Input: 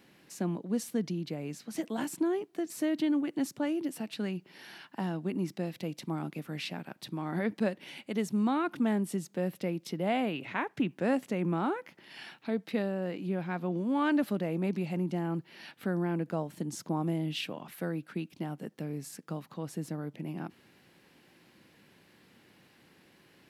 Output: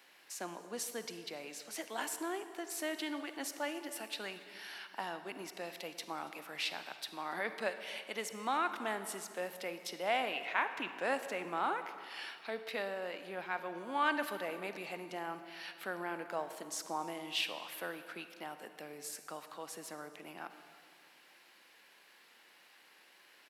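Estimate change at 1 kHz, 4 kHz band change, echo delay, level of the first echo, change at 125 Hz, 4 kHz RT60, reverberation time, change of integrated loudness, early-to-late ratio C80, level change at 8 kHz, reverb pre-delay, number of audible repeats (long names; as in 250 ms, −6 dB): +0.5 dB, +2.5 dB, 283 ms, −22.5 dB, −23.0 dB, 1.6 s, 2.1 s, −6.0 dB, 10.5 dB, +2.5 dB, 38 ms, 2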